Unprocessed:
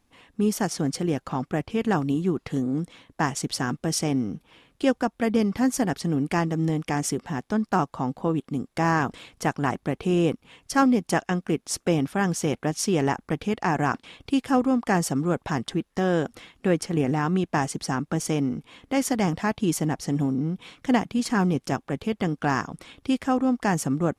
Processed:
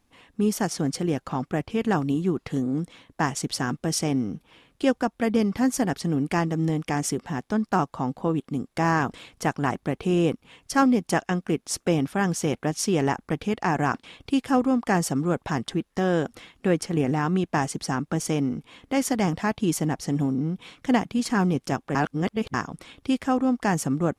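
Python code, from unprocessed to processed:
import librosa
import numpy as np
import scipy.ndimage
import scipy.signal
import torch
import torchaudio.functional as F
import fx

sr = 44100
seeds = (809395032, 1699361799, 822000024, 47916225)

y = fx.edit(x, sr, fx.reverse_span(start_s=21.95, length_s=0.59), tone=tone)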